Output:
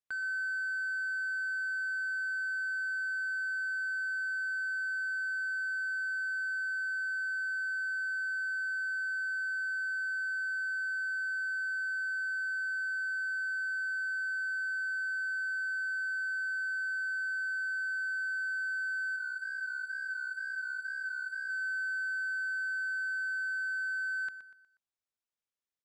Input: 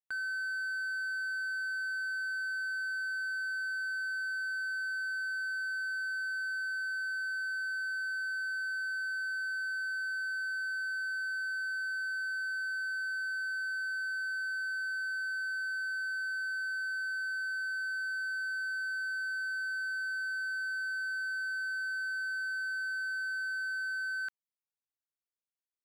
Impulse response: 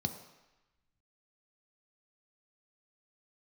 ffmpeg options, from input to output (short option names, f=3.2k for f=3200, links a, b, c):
-filter_complex "[0:a]lowpass=7.8k,bandreject=f=4.5k:w=16,asettb=1/sr,asplit=3[a][b][c];[a]atrim=end=19.164[d];[b]atrim=start=19.16:end=21.5,asetpts=PTS-STARTPTS,afade=t=in:d=0.004:c=qsin,afade=t=out:st=2.336:d=0.004:c=qsin,flanger=delay=17:depth=6.9:speed=2.1[e];[c]atrim=start=21.496[f];[d][e]acrossfade=d=0.004:c1=hsin:c2=qsin[g];[g][f]acrossfade=d=0.004:c1=qsin:c2=hsin,aecho=1:1:121|242|363|484:0.224|0.0895|0.0358|0.0143"